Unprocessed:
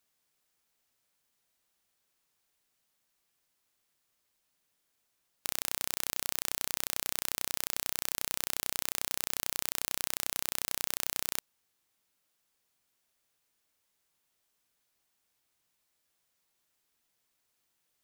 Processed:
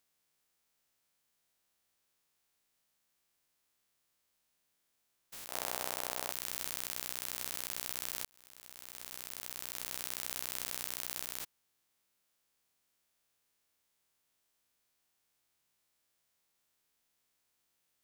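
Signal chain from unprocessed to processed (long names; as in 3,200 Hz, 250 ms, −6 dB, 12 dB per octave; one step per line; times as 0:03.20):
spectrum averaged block by block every 200 ms
0:05.48–0:06.32: parametric band 690 Hz +13 dB 1.8 octaves
0:08.25–0:10.14: fade in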